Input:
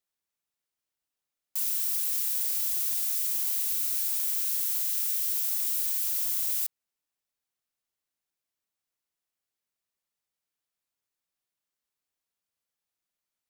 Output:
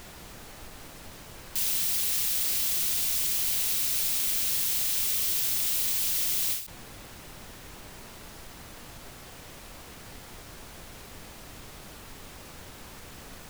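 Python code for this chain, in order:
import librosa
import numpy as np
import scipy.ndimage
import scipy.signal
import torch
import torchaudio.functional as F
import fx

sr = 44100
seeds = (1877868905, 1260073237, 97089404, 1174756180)

y = fx.peak_eq(x, sr, hz=2900.0, db=10.5, octaves=2.4)
y = fx.dmg_noise_colour(y, sr, seeds[0], colour='pink', level_db=-45.0)
y = fx.end_taper(y, sr, db_per_s=110.0)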